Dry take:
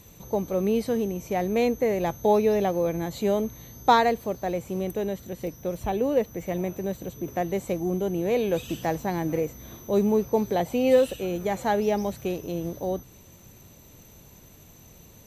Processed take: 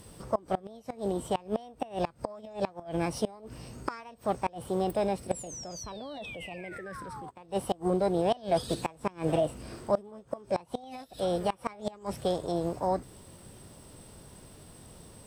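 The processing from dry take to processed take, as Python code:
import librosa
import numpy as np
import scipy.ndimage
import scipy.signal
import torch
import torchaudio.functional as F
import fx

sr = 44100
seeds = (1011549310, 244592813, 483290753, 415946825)

y = fx.spec_paint(x, sr, seeds[0], shape='fall', start_s=5.31, length_s=1.99, low_hz=730.0, high_hz=8100.0, level_db=-16.0)
y = fx.formant_shift(y, sr, semitones=5)
y = fx.gate_flip(y, sr, shuts_db=-15.0, range_db=-25)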